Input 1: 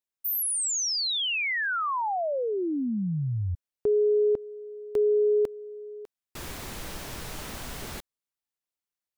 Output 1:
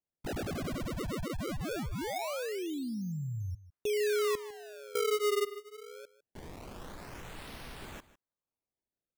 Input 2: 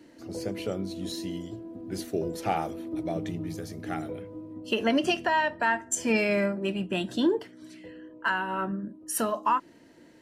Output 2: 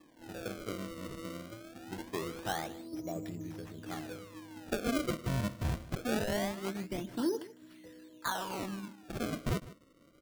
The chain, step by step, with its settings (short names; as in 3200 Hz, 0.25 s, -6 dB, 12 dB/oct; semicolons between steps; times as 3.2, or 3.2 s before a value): decimation with a swept rate 30×, swing 160% 0.23 Hz; on a send: echo 0.153 s -17.5 dB; on the sum: gain -8 dB